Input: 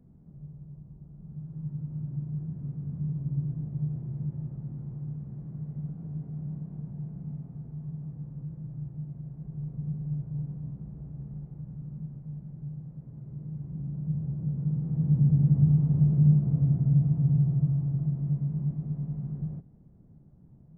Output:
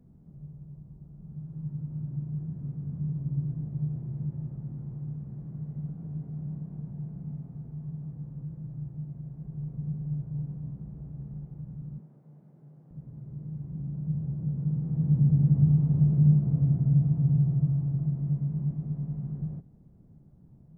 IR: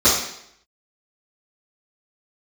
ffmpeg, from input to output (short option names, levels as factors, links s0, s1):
-filter_complex "[0:a]asettb=1/sr,asplit=3[s0][s1][s2];[s0]atrim=end=12.004[s3];[s1]atrim=start=12:end=12.91,asetpts=PTS-STARTPTS,afade=t=in:d=0.004:c=qsin,afade=t=out:st=0.906:d=0.004:c=qsin,highpass=330[s4];[s2]atrim=start=12.906[s5];[s3][s4]acrossfade=d=0.004:c1=hsin:c2=qsin[s6];[s6][s5]acrossfade=d=0.004:c1=qsin:c2=hsin"